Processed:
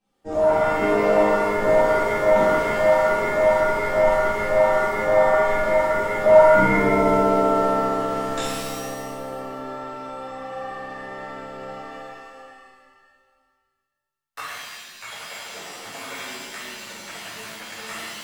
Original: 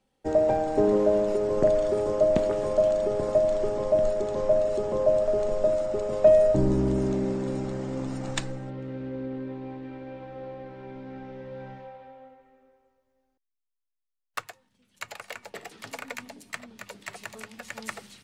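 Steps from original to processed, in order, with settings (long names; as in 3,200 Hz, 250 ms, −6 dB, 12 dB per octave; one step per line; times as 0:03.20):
mains-hum notches 60/120/180/240/300/360/420/480/540/600 Hz
reverb with rising layers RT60 1.3 s, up +7 semitones, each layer −2 dB, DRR −11.5 dB
level −9 dB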